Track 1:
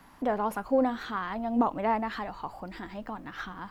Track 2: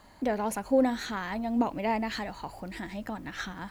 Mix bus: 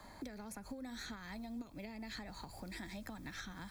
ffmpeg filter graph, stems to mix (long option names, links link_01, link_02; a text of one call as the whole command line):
ffmpeg -i stem1.wav -i stem2.wav -filter_complex "[0:a]acrossover=split=430|3000[link_01][link_02][link_03];[link_01]acompressor=threshold=-32dB:ratio=6[link_04];[link_04][link_02][link_03]amix=inputs=3:normalize=0,volume=-16.5dB,asplit=2[link_05][link_06];[1:a]volume=0.5dB[link_07];[link_06]apad=whole_len=163247[link_08];[link_07][link_08]sidechaincompress=threshold=-50dB:ratio=8:attack=16:release=229[link_09];[link_05][link_09]amix=inputs=2:normalize=0,acrossover=split=120|250|2800[link_10][link_11][link_12][link_13];[link_10]acompressor=threshold=-53dB:ratio=4[link_14];[link_11]acompressor=threshold=-55dB:ratio=4[link_15];[link_12]acompressor=threshold=-51dB:ratio=4[link_16];[link_13]acompressor=threshold=-50dB:ratio=4[link_17];[link_14][link_15][link_16][link_17]amix=inputs=4:normalize=0,asuperstop=centerf=2900:order=4:qfactor=6.8" out.wav